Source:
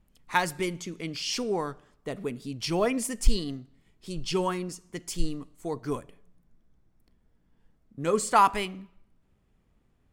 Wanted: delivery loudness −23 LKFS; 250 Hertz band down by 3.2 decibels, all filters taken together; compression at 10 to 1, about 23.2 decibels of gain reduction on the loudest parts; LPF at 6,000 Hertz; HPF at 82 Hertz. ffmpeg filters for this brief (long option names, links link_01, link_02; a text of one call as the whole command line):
ffmpeg -i in.wav -af "highpass=82,lowpass=6000,equalizer=frequency=250:width_type=o:gain=-4.5,acompressor=threshold=-39dB:ratio=10,volume=21dB" out.wav